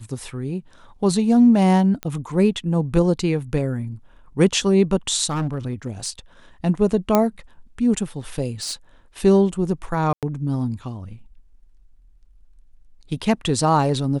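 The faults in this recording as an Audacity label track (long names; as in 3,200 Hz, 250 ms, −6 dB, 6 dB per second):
2.030000	2.030000	click −13 dBFS
5.290000	6.100000	clipping −19.5 dBFS
7.150000	7.150000	click −3 dBFS
8.610000	8.740000	clipping −23.5 dBFS
10.130000	10.230000	drop-out 97 ms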